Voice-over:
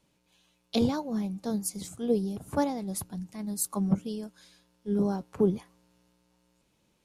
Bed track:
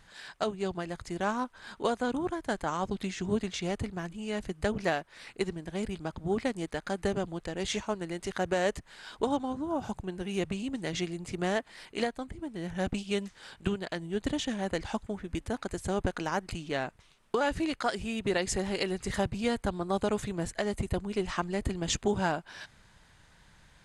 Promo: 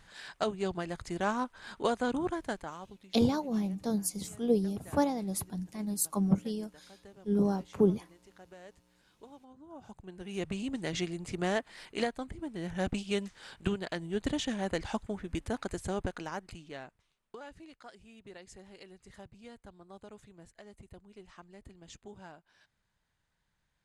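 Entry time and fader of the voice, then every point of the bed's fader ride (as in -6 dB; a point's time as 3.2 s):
2.40 s, -0.5 dB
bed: 2.4 s -0.5 dB
3.1 s -23.5 dB
9.39 s -23.5 dB
10.59 s -1 dB
15.69 s -1 dB
17.63 s -21 dB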